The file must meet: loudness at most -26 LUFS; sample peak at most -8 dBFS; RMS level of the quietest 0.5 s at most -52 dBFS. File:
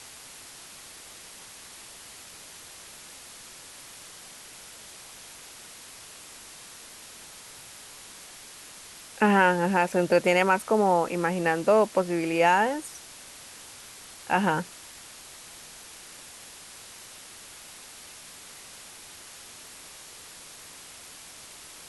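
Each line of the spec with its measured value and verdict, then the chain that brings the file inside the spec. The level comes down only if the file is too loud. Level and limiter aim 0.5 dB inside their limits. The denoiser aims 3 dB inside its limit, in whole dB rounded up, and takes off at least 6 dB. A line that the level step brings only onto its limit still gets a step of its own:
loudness -23.5 LUFS: fail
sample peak -7.5 dBFS: fail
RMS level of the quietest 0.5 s -46 dBFS: fail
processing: denoiser 6 dB, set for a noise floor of -46 dBFS; gain -3 dB

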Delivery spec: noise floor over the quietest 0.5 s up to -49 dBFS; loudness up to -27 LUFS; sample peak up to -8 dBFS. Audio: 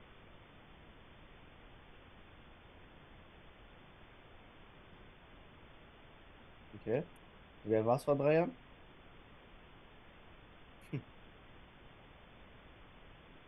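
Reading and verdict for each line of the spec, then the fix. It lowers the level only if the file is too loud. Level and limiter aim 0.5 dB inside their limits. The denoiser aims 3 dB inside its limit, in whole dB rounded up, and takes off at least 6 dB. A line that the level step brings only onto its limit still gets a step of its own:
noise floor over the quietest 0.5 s -58 dBFS: OK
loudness -35.5 LUFS: OK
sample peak -18.0 dBFS: OK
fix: none

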